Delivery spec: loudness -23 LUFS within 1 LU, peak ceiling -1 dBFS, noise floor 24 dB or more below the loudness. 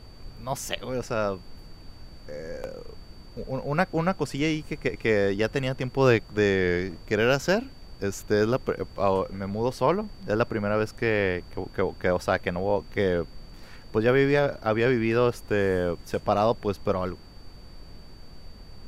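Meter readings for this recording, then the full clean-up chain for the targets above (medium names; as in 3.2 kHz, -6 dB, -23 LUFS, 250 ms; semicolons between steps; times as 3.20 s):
steady tone 4.6 kHz; tone level -55 dBFS; noise floor -46 dBFS; noise floor target -50 dBFS; loudness -26.0 LUFS; peak level -7.0 dBFS; loudness target -23.0 LUFS
-> band-stop 4.6 kHz, Q 30; noise print and reduce 6 dB; trim +3 dB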